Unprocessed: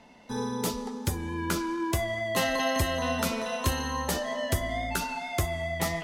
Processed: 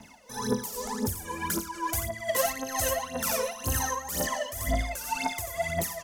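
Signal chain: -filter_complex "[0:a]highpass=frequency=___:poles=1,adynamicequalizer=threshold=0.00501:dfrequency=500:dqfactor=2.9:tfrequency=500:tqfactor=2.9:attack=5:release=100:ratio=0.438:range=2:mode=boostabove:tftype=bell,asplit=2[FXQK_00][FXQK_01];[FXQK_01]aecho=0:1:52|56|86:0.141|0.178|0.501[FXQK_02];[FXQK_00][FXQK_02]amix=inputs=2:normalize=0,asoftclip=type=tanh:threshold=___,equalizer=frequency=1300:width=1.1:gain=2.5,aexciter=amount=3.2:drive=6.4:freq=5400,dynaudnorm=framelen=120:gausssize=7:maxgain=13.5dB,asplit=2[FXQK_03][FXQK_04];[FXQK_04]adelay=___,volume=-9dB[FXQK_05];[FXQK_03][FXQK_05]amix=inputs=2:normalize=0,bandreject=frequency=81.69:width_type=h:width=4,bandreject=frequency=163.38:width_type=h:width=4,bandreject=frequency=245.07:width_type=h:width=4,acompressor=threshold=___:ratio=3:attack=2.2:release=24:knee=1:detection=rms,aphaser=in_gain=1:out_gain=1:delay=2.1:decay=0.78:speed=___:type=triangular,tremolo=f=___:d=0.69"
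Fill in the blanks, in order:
51, -19.5dB, 19, -34dB, 1.9, 2.1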